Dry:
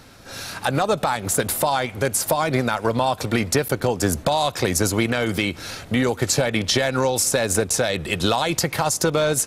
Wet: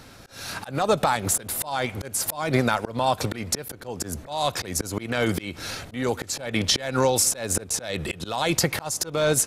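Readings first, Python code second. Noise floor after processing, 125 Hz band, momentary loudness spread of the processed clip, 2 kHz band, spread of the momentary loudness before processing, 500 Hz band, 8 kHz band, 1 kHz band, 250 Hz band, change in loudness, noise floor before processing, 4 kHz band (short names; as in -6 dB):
-45 dBFS, -5.0 dB, 11 LU, -5.0 dB, 4 LU, -5.0 dB, -2.0 dB, -4.0 dB, -5.0 dB, -4.0 dB, -41 dBFS, -3.0 dB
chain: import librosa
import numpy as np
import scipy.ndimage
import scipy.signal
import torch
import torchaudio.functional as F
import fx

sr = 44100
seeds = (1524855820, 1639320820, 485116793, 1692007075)

y = fx.auto_swell(x, sr, attack_ms=247.0)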